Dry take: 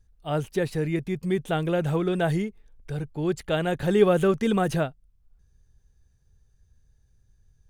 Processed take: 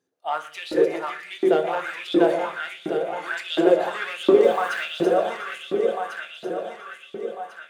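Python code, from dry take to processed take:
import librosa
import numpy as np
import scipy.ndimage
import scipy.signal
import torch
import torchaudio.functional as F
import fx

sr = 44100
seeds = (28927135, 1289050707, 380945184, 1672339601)

p1 = fx.reverse_delay_fb(x, sr, ms=698, feedback_pct=60, wet_db=-4)
p2 = scipy.signal.sosfilt(scipy.signal.butter(2, 120.0, 'highpass', fs=sr, output='sos'), p1)
p3 = fx.high_shelf(p2, sr, hz=7400.0, db=-8.5)
p4 = fx.hum_notches(p3, sr, base_hz=50, count=4)
p5 = np.clip(10.0 ** (23.0 / 20.0) * p4, -1.0, 1.0) / 10.0 ** (23.0 / 20.0)
p6 = p4 + (p5 * 10.0 ** (-3.5 / 20.0))
p7 = fx.quant_dither(p6, sr, seeds[0], bits=8, dither='none', at=(4.43, 4.83))
p8 = p7 + fx.echo_heads(p7, sr, ms=120, heads='all three', feedback_pct=57, wet_db=-15.0, dry=0)
p9 = fx.filter_lfo_highpass(p8, sr, shape='saw_up', hz=1.4, low_hz=290.0, high_hz=4000.0, q=4.5)
p10 = fx.room_shoebox(p9, sr, seeds[1], volume_m3=230.0, walls='furnished', distance_m=0.82)
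y = p10 * 10.0 ** (-4.5 / 20.0)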